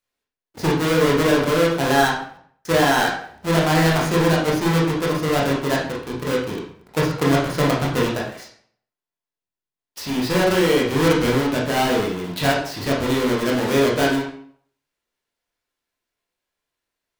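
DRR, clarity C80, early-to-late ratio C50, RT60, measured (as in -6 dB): -4.0 dB, 8.5 dB, 4.0 dB, 0.60 s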